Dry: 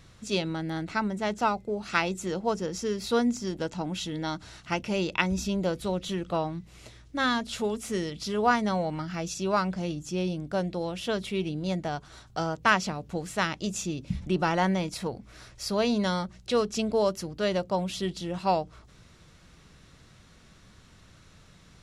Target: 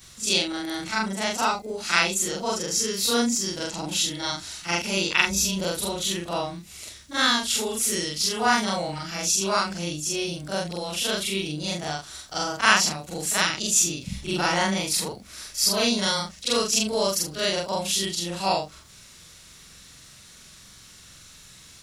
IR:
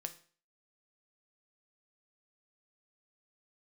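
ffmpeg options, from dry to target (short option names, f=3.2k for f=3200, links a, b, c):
-af "afftfilt=real='re':imag='-im':win_size=4096:overlap=0.75,crystalizer=i=7.5:c=0,volume=3dB"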